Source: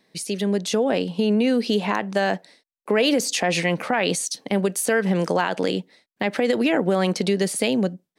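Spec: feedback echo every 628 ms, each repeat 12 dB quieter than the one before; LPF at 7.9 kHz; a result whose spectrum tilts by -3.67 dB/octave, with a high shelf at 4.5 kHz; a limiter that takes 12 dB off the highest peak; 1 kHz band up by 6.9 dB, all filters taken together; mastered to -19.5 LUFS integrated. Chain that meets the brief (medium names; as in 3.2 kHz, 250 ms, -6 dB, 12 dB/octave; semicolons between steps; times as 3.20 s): low-pass 7.9 kHz; peaking EQ 1 kHz +9 dB; treble shelf 4.5 kHz +7 dB; peak limiter -15 dBFS; feedback delay 628 ms, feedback 25%, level -12 dB; trim +5 dB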